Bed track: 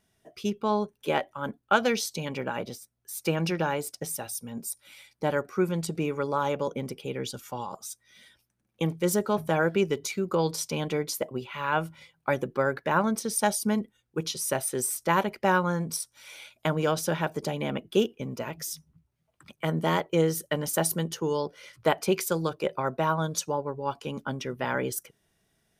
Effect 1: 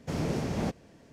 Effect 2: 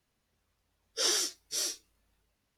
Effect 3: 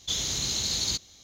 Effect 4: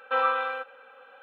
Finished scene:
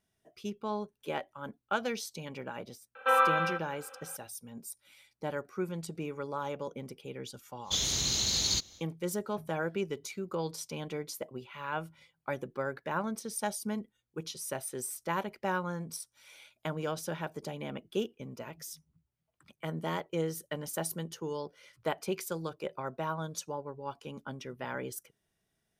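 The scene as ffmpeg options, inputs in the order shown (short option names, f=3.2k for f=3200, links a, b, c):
-filter_complex "[0:a]volume=-9dB[a];[4:a]atrim=end=1.22,asetpts=PTS-STARTPTS,afade=t=in:d=0.004:c=hsin,afade=t=out:st=1.216:d=0.004:c=hsin,adelay=2950[b];[3:a]atrim=end=1.23,asetpts=PTS-STARTPTS,volume=-1dB,afade=t=in:d=0.1,afade=t=out:st=1.13:d=0.1,adelay=7630[c];[a][b][c]amix=inputs=3:normalize=0"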